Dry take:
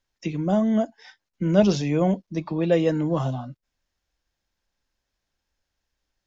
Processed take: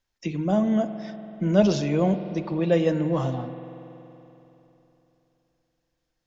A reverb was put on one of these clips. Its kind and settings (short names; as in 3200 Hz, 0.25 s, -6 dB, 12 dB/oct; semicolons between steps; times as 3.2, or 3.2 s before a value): spring tank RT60 3.3 s, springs 47 ms, chirp 40 ms, DRR 10 dB; gain -1 dB